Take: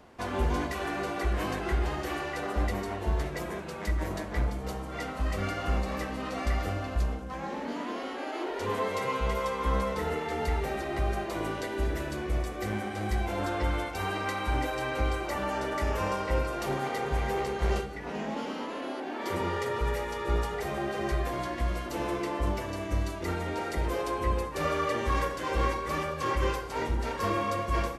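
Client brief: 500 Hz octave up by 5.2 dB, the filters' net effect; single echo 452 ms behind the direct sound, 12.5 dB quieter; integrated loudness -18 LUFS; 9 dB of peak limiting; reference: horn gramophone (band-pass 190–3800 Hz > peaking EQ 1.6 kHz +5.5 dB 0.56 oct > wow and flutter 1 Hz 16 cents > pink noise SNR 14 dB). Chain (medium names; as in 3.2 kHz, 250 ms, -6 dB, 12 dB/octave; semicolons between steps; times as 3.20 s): peaking EQ 500 Hz +6.5 dB; peak limiter -21 dBFS; band-pass 190–3800 Hz; peaking EQ 1.6 kHz +5.5 dB 0.56 oct; delay 452 ms -12.5 dB; wow and flutter 1 Hz 16 cents; pink noise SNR 14 dB; trim +12.5 dB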